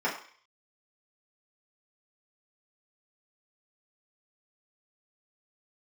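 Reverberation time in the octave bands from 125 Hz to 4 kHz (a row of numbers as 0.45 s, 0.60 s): 0.25 s, 0.40 s, 0.45 s, 0.55 s, 0.55 s, 0.60 s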